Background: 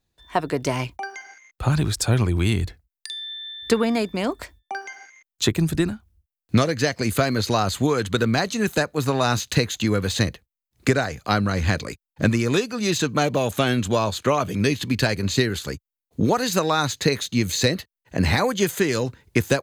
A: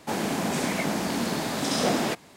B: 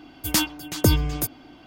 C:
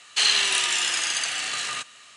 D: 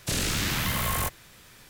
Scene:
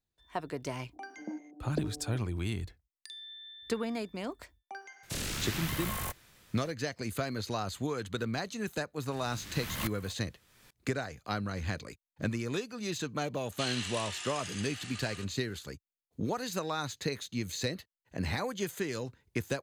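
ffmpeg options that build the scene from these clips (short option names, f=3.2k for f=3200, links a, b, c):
-filter_complex "[4:a]asplit=2[a][b];[0:a]volume=-13.5dB[c];[2:a]asuperpass=centerf=380:order=8:qfactor=0.75[d];[b]aeval=exprs='val(0)*pow(10,-27*if(lt(mod(-1.2*n/s,1),2*abs(-1.2)/1000),1-mod(-1.2*n/s,1)/(2*abs(-1.2)/1000),(mod(-1.2*n/s,1)-2*abs(-1.2)/1000)/(1-2*abs(-1.2)/1000))/20)':c=same[e];[d]atrim=end=1.66,asetpts=PTS-STARTPTS,volume=-12dB,afade=t=in:d=0.004:c=hsin,afade=t=out:st=1.656:d=0.004:c=hsin,adelay=930[f];[a]atrim=end=1.69,asetpts=PTS-STARTPTS,volume=-8.5dB,afade=t=in:d=0.004:c=hsin,afade=t=out:st=1.686:d=0.004:c=hsin,adelay=5030[g];[e]atrim=end=1.69,asetpts=PTS-STARTPTS,volume=-6dB,afade=t=in:d=0.004:c=hsin,afade=t=out:st=1.686:d=0.004:c=hsin,adelay=9040[h];[3:a]atrim=end=2.16,asetpts=PTS-STARTPTS,volume=-17dB,afade=t=in:d=0.004:c=hsin,afade=t=out:st=2.156:d=0.004:c=hsin,adelay=13420[i];[c][f][g][h][i]amix=inputs=5:normalize=0"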